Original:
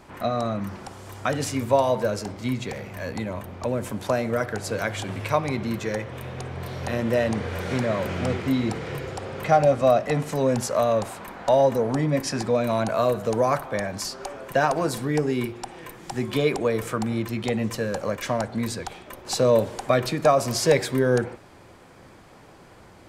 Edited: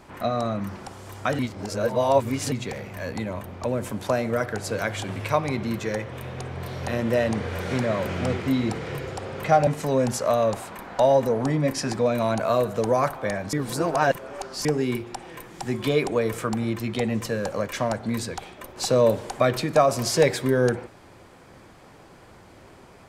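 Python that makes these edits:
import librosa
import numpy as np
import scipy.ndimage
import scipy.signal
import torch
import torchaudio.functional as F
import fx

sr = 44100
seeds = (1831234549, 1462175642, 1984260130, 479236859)

y = fx.edit(x, sr, fx.reverse_span(start_s=1.39, length_s=1.13),
    fx.cut(start_s=9.67, length_s=0.49),
    fx.reverse_span(start_s=14.02, length_s=1.12), tone=tone)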